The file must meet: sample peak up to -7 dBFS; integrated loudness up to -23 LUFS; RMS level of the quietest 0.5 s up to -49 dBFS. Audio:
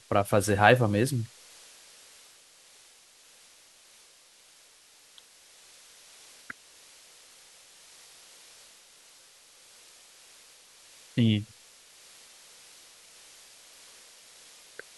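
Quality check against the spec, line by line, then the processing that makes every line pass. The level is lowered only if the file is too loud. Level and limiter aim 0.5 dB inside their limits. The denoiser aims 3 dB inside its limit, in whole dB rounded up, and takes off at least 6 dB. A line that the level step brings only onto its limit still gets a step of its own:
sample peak -3.0 dBFS: fail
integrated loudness -25.0 LUFS: OK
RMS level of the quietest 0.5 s -58 dBFS: OK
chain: limiter -7.5 dBFS

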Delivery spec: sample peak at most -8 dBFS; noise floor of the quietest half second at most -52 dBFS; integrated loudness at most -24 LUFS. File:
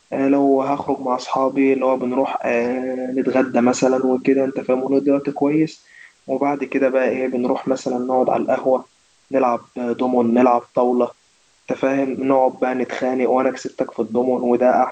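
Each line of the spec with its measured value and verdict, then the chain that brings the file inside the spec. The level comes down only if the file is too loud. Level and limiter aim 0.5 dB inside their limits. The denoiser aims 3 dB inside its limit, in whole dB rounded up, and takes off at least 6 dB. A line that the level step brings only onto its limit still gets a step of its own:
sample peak -3.5 dBFS: fail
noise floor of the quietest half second -58 dBFS: OK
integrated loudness -19.0 LUFS: fail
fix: gain -5.5 dB

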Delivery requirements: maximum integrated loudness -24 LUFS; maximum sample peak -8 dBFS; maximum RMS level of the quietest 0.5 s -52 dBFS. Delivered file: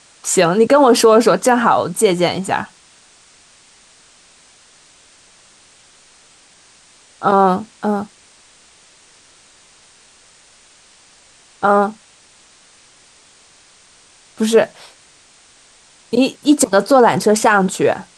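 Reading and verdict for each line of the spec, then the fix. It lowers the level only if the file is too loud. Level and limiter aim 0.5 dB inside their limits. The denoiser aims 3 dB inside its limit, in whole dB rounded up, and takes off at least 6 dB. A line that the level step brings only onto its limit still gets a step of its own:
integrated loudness -14.5 LUFS: fail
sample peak -2.0 dBFS: fail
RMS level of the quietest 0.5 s -49 dBFS: fail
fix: gain -10 dB

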